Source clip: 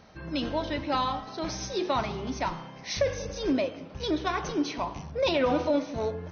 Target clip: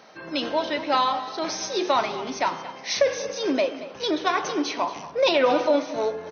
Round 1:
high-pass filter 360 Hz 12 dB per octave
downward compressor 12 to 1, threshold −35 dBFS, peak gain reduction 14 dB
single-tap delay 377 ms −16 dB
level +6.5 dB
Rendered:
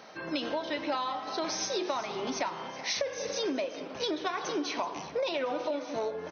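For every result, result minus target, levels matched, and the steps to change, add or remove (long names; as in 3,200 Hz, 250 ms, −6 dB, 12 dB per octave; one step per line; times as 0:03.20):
downward compressor: peak gain reduction +14 dB; echo 148 ms late
remove: downward compressor 12 to 1, threshold −35 dBFS, peak gain reduction 14 dB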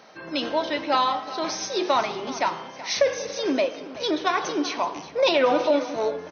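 echo 148 ms late
change: single-tap delay 229 ms −16 dB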